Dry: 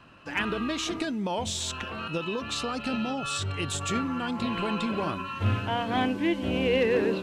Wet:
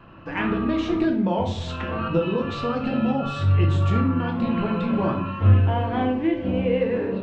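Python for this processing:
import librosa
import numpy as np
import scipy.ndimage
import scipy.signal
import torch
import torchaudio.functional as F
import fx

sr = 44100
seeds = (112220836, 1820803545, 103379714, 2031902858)

y = fx.rider(x, sr, range_db=10, speed_s=0.5)
y = fx.spacing_loss(y, sr, db_at_10k=35)
y = fx.room_shoebox(y, sr, seeds[0], volume_m3=80.0, walls='mixed', distance_m=0.68)
y = y * 10.0 ** (4.0 / 20.0)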